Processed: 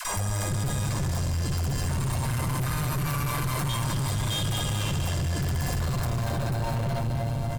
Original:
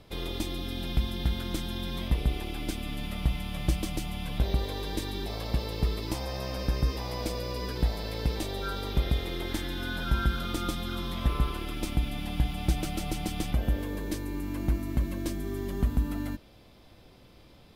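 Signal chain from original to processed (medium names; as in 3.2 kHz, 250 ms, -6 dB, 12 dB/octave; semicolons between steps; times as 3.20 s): peaking EQ 190 Hz -11.5 dB 0.67 oct; comb 4.4 ms, depth 54%; echo that smears into a reverb 511 ms, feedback 66%, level -5.5 dB; speed mistake 33 rpm record played at 78 rpm; phase dispersion lows, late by 124 ms, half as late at 340 Hz; valve stage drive 33 dB, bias 0.65; bass shelf 88 Hz +11.5 dB; level flattener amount 70%; trim +3.5 dB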